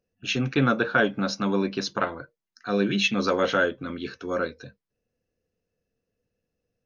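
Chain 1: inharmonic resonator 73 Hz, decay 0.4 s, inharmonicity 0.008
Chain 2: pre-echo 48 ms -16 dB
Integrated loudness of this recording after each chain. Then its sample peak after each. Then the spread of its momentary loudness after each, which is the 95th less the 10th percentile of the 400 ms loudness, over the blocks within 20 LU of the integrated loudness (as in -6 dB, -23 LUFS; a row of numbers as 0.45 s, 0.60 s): -35.0 LUFS, -25.5 LUFS; -18.5 dBFS, -8.5 dBFS; 16 LU, 12 LU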